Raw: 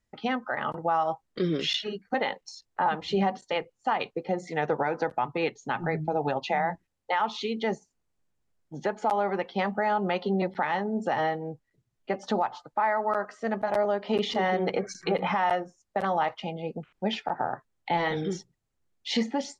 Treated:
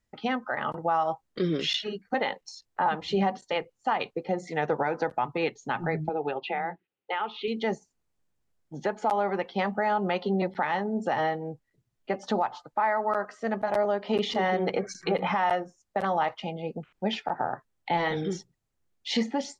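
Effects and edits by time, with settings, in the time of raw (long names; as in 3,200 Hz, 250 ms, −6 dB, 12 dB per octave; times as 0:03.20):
0:06.09–0:07.48: loudspeaker in its box 240–3,300 Hz, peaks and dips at 250 Hz −7 dB, 390 Hz +5 dB, 620 Hz −8 dB, 1,000 Hz −8 dB, 1,800 Hz −5 dB, 2,800 Hz +3 dB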